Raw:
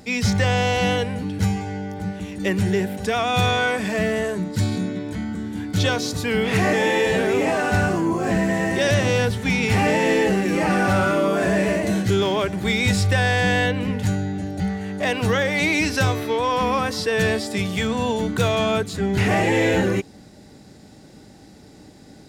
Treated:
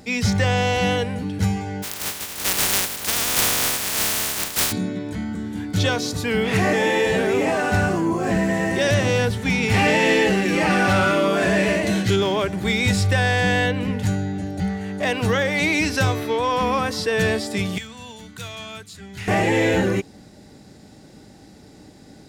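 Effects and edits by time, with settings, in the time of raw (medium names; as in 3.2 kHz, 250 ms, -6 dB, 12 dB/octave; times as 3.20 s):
1.82–4.71 s: spectral contrast reduction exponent 0.1
9.74–12.16 s: peaking EQ 3.2 kHz +6.5 dB 1.8 oct
17.78–19.28 s: amplifier tone stack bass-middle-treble 5-5-5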